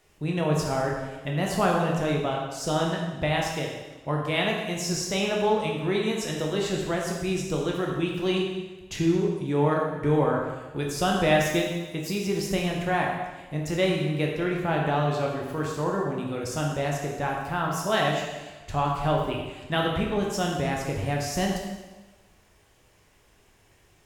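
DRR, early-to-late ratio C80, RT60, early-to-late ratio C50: -1.5 dB, 4.0 dB, 1.2 s, 2.0 dB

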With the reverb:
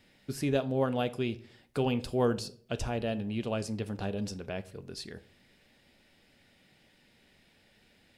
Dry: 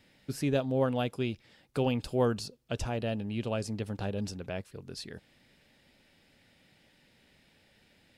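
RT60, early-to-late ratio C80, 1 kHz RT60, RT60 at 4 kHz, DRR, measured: 0.50 s, 22.0 dB, 0.45 s, 0.35 s, 11.5 dB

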